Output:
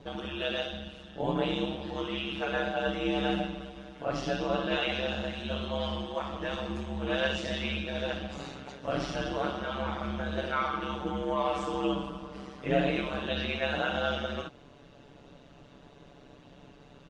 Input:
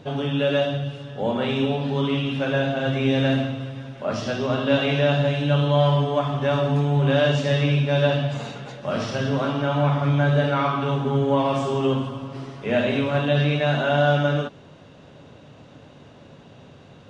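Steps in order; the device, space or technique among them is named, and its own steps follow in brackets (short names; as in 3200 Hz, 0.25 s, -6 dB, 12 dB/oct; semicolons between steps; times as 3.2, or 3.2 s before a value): ring-modulated robot voice (ring modulator 67 Hz; comb 7 ms, depth 67%); gain -4.5 dB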